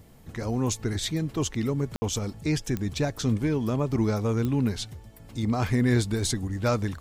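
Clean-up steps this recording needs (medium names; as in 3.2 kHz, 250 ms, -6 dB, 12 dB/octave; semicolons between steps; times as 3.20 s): de-click; room tone fill 1.96–2.02 s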